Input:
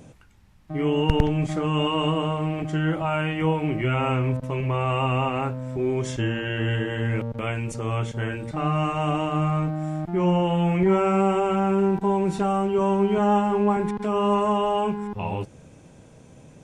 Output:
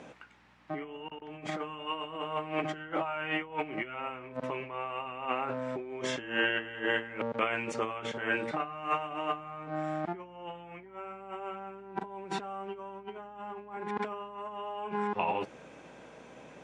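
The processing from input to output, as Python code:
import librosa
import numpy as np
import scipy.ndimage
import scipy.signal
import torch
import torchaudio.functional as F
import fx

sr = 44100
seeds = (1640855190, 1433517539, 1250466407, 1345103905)

y = fx.over_compress(x, sr, threshold_db=-29.0, ratio=-0.5)
y = scipy.signal.sosfilt(scipy.signal.butter(2, 210.0, 'highpass', fs=sr, output='sos'), y)
y = fx.add_hum(y, sr, base_hz=60, snr_db=24)
y = scipy.signal.sosfilt(scipy.signal.butter(2, 1900.0, 'lowpass', fs=sr, output='sos'), y)
y = fx.tilt_eq(y, sr, slope=4.0)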